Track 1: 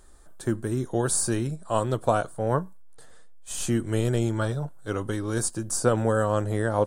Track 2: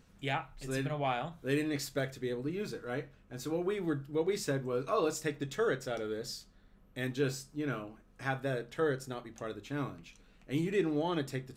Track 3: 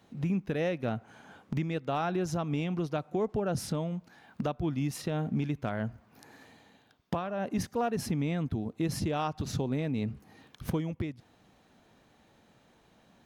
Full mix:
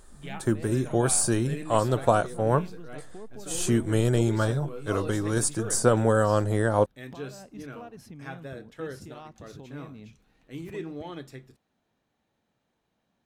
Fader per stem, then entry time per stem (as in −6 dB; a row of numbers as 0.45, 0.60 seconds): +1.5, −6.0, −14.0 decibels; 0.00, 0.00, 0.00 seconds